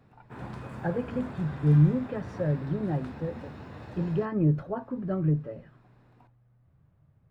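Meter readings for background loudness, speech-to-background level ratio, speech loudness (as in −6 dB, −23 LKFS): −42.5 LKFS, 14.0 dB, −28.5 LKFS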